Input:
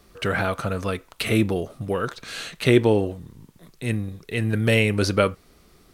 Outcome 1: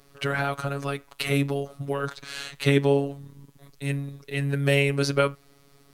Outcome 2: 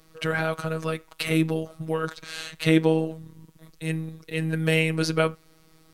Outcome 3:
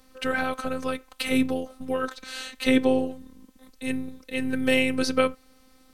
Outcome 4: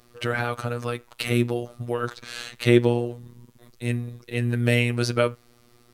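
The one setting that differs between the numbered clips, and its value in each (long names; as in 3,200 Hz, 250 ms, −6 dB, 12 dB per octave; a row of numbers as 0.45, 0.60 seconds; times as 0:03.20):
phases set to zero, frequency: 140, 160, 260, 120 Hertz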